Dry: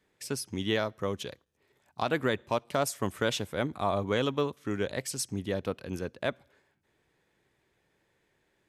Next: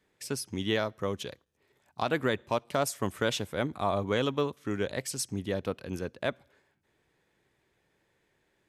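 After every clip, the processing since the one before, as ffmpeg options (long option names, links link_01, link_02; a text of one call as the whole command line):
ffmpeg -i in.wav -af anull out.wav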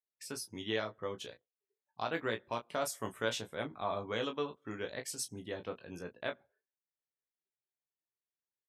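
ffmpeg -i in.wav -af "afftdn=noise_reduction=28:noise_floor=-54,lowshelf=frequency=330:gain=-7.5,aecho=1:1:18|34:0.531|0.282,volume=-6.5dB" out.wav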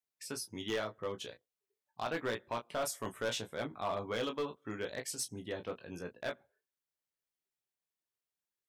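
ffmpeg -i in.wav -af "asoftclip=type=hard:threshold=-30dB,volume=1dB" out.wav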